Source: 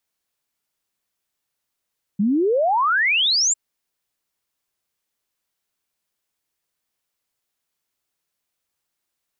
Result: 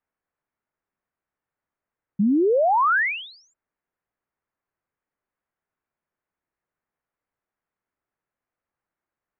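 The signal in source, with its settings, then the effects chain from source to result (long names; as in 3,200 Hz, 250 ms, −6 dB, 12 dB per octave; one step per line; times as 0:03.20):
exponential sine sweep 190 Hz → 7,600 Hz 1.35 s −15.5 dBFS
low-pass filter 1,900 Hz 24 dB per octave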